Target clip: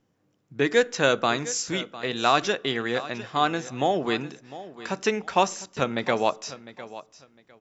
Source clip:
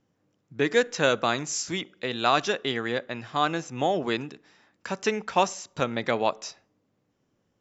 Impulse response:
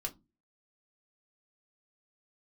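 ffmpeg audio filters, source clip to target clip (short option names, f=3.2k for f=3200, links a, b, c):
-filter_complex "[0:a]aecho=1:1:704|1408:0.158|0.0333,asplit=2[a][b];[1:a]atrim=start_sample=2205[c];[b][c]afir=irnorm=-1:irlink=0,volume=-13dB[d];[a][d]amix=inputs=2:normalize=0"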